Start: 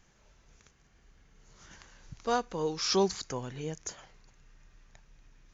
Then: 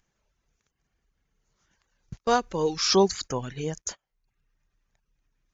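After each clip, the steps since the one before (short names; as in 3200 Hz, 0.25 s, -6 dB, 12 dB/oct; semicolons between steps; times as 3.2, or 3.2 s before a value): in parallel at +1.5 dB: upward compressor, threshold -35 dBFS; on the sum: gate -35 dBFS, range -28 dB; reverb removal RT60 0.58 s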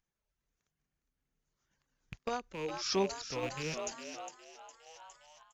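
rattling part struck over -37 dBFS, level -21 dBFS; frequency-shifting echo 0.409 s, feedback 57%, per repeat +110 Hz, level -8 dB; random-step tremolo; gain -8.5 dB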